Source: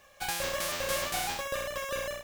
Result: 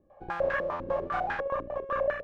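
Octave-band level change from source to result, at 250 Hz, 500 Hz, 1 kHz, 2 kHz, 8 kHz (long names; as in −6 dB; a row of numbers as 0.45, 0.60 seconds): +3.5 dB, +5.5 dB, +4.0 dB, 0.0 dB, below −30 dB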